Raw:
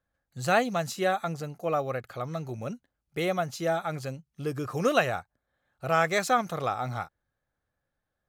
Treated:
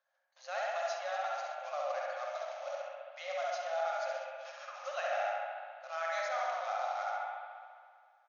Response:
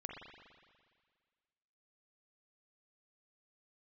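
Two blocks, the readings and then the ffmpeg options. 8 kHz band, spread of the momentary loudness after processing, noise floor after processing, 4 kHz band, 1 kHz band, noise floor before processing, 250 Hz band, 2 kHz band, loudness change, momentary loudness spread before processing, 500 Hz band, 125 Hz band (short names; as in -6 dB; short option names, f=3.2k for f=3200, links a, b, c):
-11.5 dB, 11 LU, -69 dBFS, -8.5 dB, -6.0 dB, -84 dBFS, under -40 dB, -8.0 dB, -8.5 dB, 13 LU, -7.5 dB, under -40 dB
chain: -filter_complex "[0:a]acrusher=bits=3:mode=log:mix=0:aa=0.000001,aecho=1:1:67|134|201|268|335:0.501|0.226|0.101|0.0457|0.0206,areverse,acompressor=threshold=-39dB:ratio=4,areverse[a];[1:a]atrim=start_sample=2205,asetrate=38367,aresample=44100[b];[a][b]afir=irnorm=-1:irlink=0,afftfilt=real='re*between(b*sr/4096,520,6800)':imag='im*between(b*sr/4096,520,6800)':win_size=4096:overlap=0.75,volume=5.5dB"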